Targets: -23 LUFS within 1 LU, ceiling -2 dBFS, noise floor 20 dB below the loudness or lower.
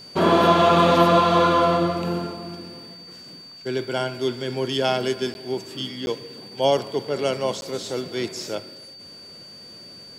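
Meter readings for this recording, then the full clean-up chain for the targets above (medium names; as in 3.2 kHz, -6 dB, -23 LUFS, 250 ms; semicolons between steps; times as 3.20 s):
dropouts 3; longest dropout 11 ms; steady tone 4.6 kHz; tone level -41 dBFS; loudness -21.5 LUFS; peak level -5.0 dBFS; loudness target -23.0 LUFS
-> interpolate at 5.34/6.06/7.61 s, 11 ms; band-stop 4.6 kHz, Q 30; trim -1.5 dB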